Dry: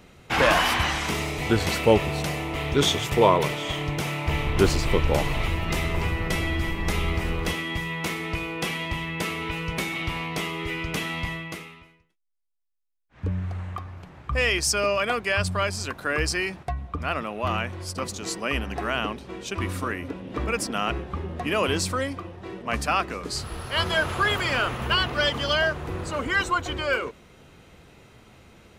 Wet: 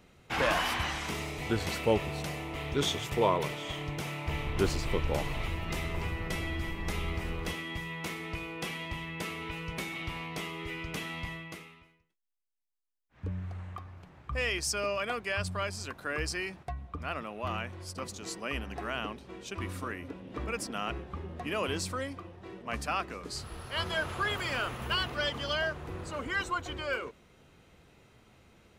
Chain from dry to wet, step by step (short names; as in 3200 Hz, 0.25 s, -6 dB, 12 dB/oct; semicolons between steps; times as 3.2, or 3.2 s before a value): 24.38–25.14 high shelf 11000 Hz -> 6000 Hz +7 dB; gain -8.5 dB